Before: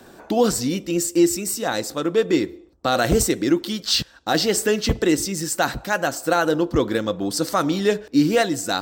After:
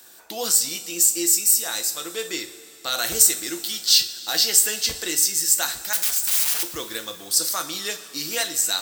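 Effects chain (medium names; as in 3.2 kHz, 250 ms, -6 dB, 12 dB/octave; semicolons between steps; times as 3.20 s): 5.93–6.63 s: integer overflow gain 23.5 dB; pre-emphasis filter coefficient 0.97; two-slope reverb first 0.33 s, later 3.8 s, from -18 dB, DRR 6 dB; trim +7.5 dB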